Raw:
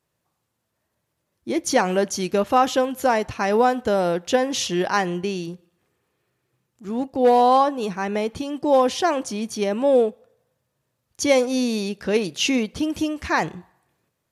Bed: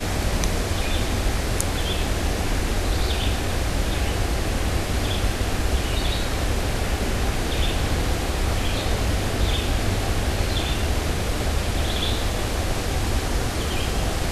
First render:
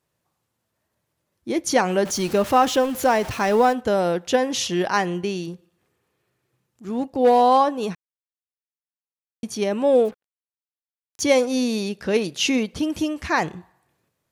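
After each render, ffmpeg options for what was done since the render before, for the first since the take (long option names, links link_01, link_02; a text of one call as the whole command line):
ffmpeg -i in.wav -filter_complex "[0:a]asettb=1/sr,asplit=3[link_01][link_02][link_03];[link_01]atrim=end=2.054[link_04];[link_02]atrim=start=2.05:end=3.73,asetpts=PTS-STARTPTS,afade=type=in:duration=0.004:curve=qsin,afade=type=out:start_time=1.676:duration=0.004:curve=qsin,aeval=exprs='val(0)+0.5*0.0299*sgn(val(0))':channel_layout=same[link_05];[link_03]atrim=start=3.726[link_06];[link_04][link_05]acrossfade=duration=0.004:curve1=hsin:curve2=qsin[link_07];[link_07][link_06]acrossfade=duration=0.004:curve1=qsin:curve2=hsin,asettb=1/sr,asplit=3[link_08][link_09][link_10];[link_08]atrim=end=10.054[link_11];[link_09]atrim=start=10.05:end=11.22,asetpts=PTS-STARTPTS,afade=type=in:duration=0.004:curve=qsin,afade=type=out:start_time=1.166:duration=0.004:curve=qsin,acrusher=bits=6:mix=0:aa=0.5[link_12];[link_10]atrim=start=11.216[link_13];[link_11][link_12]acrossfade=duration=0.004:curve1=hsin:curve2=qsin[link_14];[link_14][link_13]acrossfade=duration=0.004:curve1=qsin:curve2=hsin,asplit=3[link_15][link_16][link_17];[link_15]atrim=end=7.95,asetpts=PTS-STARTPTS,afade=type=out:start_time=7.946:duration=0.004:curve=hsin[link_18];[link_16]atrim=start=7.95:end=9.43,asetpts=PTS-STARTPTS,volume=0[link_19];[link_17]atrim=start=9.43,asetpts=PTS-STARTPTS,afade=type=in:duration=0.004:curve=hsin[link_20];[link_18][link_19][link_20]concat=n=3:v=0:a=1" out.wav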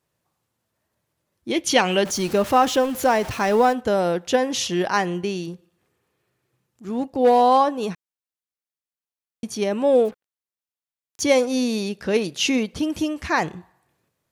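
ffmpeg -i in.wav -filter_complex "[0:a]asettb=1/sr,asplit=3[link_01][link_02][link_03];[link_01]atrim=end=1.514[link_04];[link_02]atrim=start=1.51:end=2.04,asetpts=PTS-STARTPTS,afade=type=in:duration=0.004:curve=qsin,afade=type=out:start_time=0.526:duration=0.004:curve=qsin,equalizer=frequency=3000:width_type=o:width=0.72:gain=13[link_05];[link_03]atrim=start=2.036[link_06];[link_04][link_05]acrossfade=duration=0.004:curve1=hsin:curve2=qsin[link_07];[link_07][link_06]acrossfade=duration=0.004:curve1=qsin:curve2=hsin" out.wav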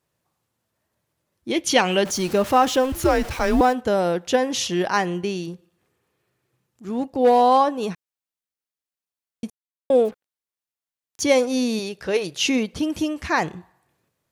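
ffmpeg -i in.wav -filter_complex "[0:a]asettb=1/sr,asplit=3[link_01][link_02][link_03];[link_01]atrim=end=2.924[link_04];[link_02]atrim=start=2.92:end=3.61,asetpts=PTS-STARTPTS,afade=type=in:duration=0.004:curve=qsin,afade=type=out:start_time=0.686:duration=0.004:curve=qsin,afreqshift=-180[link_05];[link_03]atrim=start=3.606[link_06];[link_04][link_05]acrossfade=duration=0.004:curve1=hsin:curve2=qsin[link_07];[link_07][link_06]acrossfade=duration=0.004:curve1=qsin:curve2=hsin,asettb=1/sr,asplit=3[link_08][link_09][link_10];[link_08]atrim=end=11.794[link_11];[link_09]atrim=start=11.79:end=12.44,asetpts=PTS-STARTPTS,afade=type=in:duration=0.004:curve=qsin,afade=type=out:start_time=0.646:duration=0.004:curve=qsin,equalizer=frequency=230:width_type=o:width=0.38:gain=-14[link_12];[link_10]atrim=start=12.436[link_13];[link_11][link_12]acrossfade=duration=0.004:curve1=hsin:curve2=qsin[link_14];[link_14][link_13]acrossfade=duration=0.004:curve1=qsin:curve2=hsin,asplit=3[link_15][link_16][link_17];[link_15]atrim=end=9.5,asetpts=PTS-STARTPTS,afade=type=out:start_time=9.496:duration=0.004:curve=hsin[link_18];[link_16]atrim=start=9.5:end=9.9,asetpts=PTS-STARTPTS,volume=0[link_19];[link_17]atrim=start=9.9,asetpts=PTS-STARTPTS,afade=type=in:duration=0.004:curve=hsin[link_20];[link_18][link_19][link_20]concat=n=3:v=0:a=1" out.wav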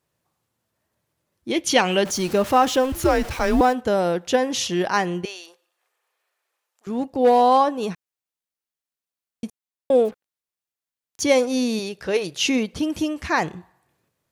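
ffmpeg -i in.wav -filter_complex "[0:a]asettb=1/sr,asplit=3[link_01][link_02][link_03];[link_01]atrim=end=5.254[link_04];[link_02]atrim=start=5.25:end=6.87,asetpts=PTS-STARTPTS,afade=type=in:duration=0.004:curve=qsin,afade=type=out:start_time=1.616:duration=0.004:curve=qsin,highpass=frequency=600:width=0.5412,highpass=frequency=600:width=1.3066[link_05];[link_03]atrim=start=6.866[link_06];[link_04][link_05]acrossfade=duration=0.004:curve1=hsin:curve2=qsin[link_07];[link_07][link_06]acrossfade=duration=0.004:curve1=qsin:curve2=hsin" out.wav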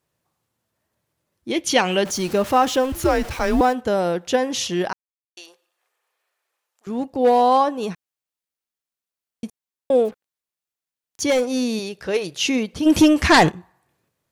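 ffmpeg -i in.wav -filter_complex "[0:a]asettb=1/sr,asplit=3[link_01][link_02][link_03];[link_01]atrim=end=11.304[link_04];[link_02]atrim=start=11.3:end=12.16,asetpts=PTS-STARTPTS,afade=type=in:duration=0.004:curve=qsin,afade=type=out:start_time=0.856:duration=0.004:curve=qsin,asoftclip=type=hard:threshold=-14dB[link_05];[link_03]atrim=start=12.156[link_06];[link_04][link_05]acrossfade=duration=0.004:curve1=hsin:curve2=qsin[link_07];[link_07][link_06]acrossfade=duration=0.004:curve1=qsin:curve2=hsin,asplit=3[link_08][link_09][link_10];[link_08]afade=type=out:start_time=12.85:duration=0.02[link_11];[link_09]aeval=exprs='0.447*sin(PI/2*2.82*val(0)/0.447)':channel_layout=same,afade=type=in:start_time=12.85:duration=0.02,afade=type=out:start_time=13.49:duration=0.02[link_12];[link_10]afade=type=in:start_time=13.49:duration=0.02[link_13];[link_11][link_12][link_13]amix=inputs=3:normalize=0,asplit=3[link_14][link_15][link_16];[link_14]atrim=end=4.93,asetpts=PTS-STARTPTS,afade=type=out:start_time=4.926:duration=0.004:curve=hsin[link_17];[link_15]atrim=start=4.93:end=5.37,asetpts=PTS-STARTPTS,volume=0[link_18];[link_16]atrim=start=5.37,asetpts=PTS-STARTPTS,afade=type=in:duration=0.004:curve=hsin[link_19];[link_17][link_18][link_19]concat=n=3:v=0:a=1" out.wav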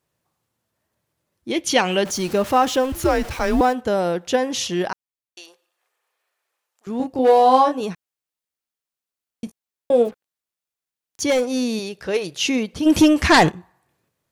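ffmpeg -i in.wav -filter_complex "[0:a]asettb=1/sr,asplit=3[link_01][link_02][link_03];[link_01]atrim=end=6.974[link_04];[link_02]atrim=start=6.97:end=7.81,asetpts=PTS-STARTPTS,afade=type=in:duration=0.004:curve=qsin,afade=type=out:start_time=0.836:duration=0.004:curve=qsin,asplit=2[link_05][link_06];[link_06]adelay=27,volume=-3dB[link_07];[link_05][link_07]amix=inputs=2:normalize=0,atrim=end_sample=37044[link_08];[link_03]atrim=start=7.806[link_09];[link_04][link_08]acrossfade=duration=0.004:curve1=hsin:curve2=qsin[link_10];[link_10][link_09]acrossfade=duration=0.004:curve1=qsin:curve2=hsin,asettb=1/sr,asplit=3[link_11][link_12][link_13];[link_11]atrim=end=9.454[link_14];[link_12]atrim=start=9.45:end=10.07,asetpts=PTS-STARTPTS,afade=type=in:duration=0.004:curve=qsin,afade=type=out:start_time=0.616:duration=0.004:curve=qsin,asplit=2[link_15][link_16];[link_16]adelay=17,volume=-7dB[link_17];[link_15][link_17]amix=inputs=2:normalize=0,atrim=end_sample=27342[link_18];[link_13]atrim=start=10.066[link_19];[link_14][link_18]acrossfade=duration=0.004:curve1=hsin:curve2=qsin[link_20];[link_20][link_19]acrossfade=duration=0.004:curve1=qsin:curve2=hsin" out.wav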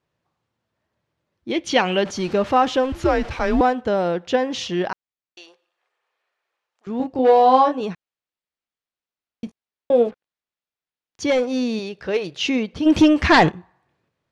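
ffmpeg -i in.wav -af "lowpass=4100" out.wav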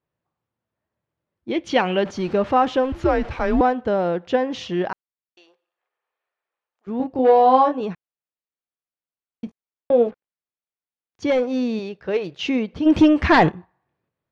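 ffmpeg -i in.wav -af "agate=range=-6dB:threshold=-35dB:ratio=16:detection=peak,lowpass=frequency=2200:poles=1" out.wav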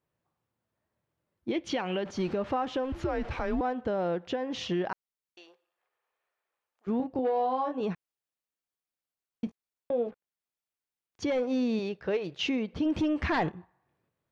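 ffmpeg -i in.wav -af "acompressor=threshold=-22dB:ratio=2,alimiter=limit=-21dB:level=0:latency=1:release=476" out.wav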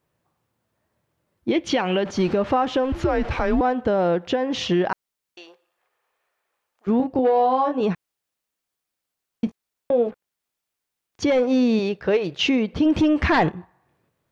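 ffmpeg -i in.wav -af "volume=9.5dB" out.wav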